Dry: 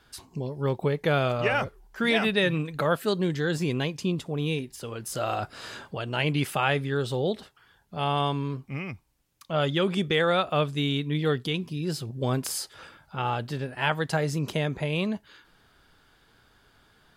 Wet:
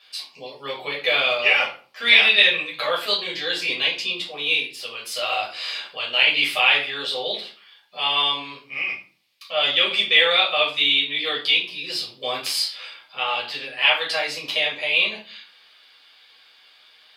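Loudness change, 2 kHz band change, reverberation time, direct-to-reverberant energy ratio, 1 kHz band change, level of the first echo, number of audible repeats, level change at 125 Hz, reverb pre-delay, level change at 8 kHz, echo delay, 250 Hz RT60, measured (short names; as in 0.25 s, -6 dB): +8.0 dB, +11.5 dB, 0.40 s, -5.0 dB, +2.0 dB, none, none, -22.0 dB, 8 ms, +1.5 dB, none, 0.55 s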